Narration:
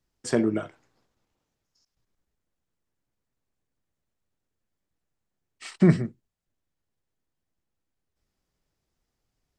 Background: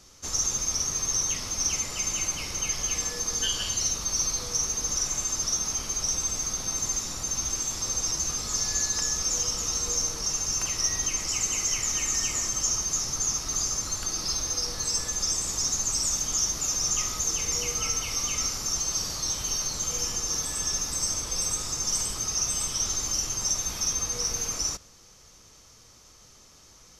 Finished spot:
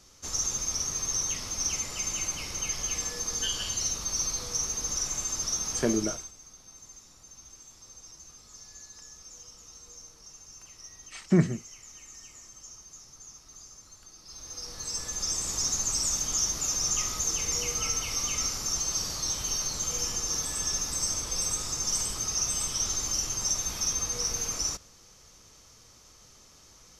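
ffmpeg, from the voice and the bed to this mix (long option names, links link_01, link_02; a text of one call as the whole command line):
ffmpeg -i stem1.wav -i stem2.wav -filter_complex "[0:a]adelay=5500,volume=-3.5dB[link_01];[1:a]volume=16.5dB,afade=type=out:start_time=5.88:duration=0.44:silence=0.125893,afade=type=in:start_time=14.25:duration=1.31:silence=0.105925[link_02];[link_01][link_02]amix=inputs=2:normalize=0" out.wav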